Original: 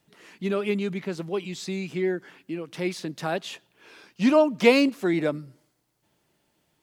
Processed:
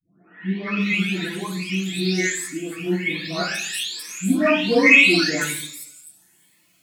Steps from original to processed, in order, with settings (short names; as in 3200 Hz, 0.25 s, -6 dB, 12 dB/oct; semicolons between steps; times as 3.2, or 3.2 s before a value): spectral delay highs late, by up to 0.815 s; tilt shelf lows -9.5 dB, about 1400 Hz; in parallel at -8.5 dB: overloaded stage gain 19.5 dB; on the sum: reverb RT60 0.70 s, pre-delay 3 ms, DRR -2.5 dB; cascading phaser rising 1.2 Hz; gain +3 dB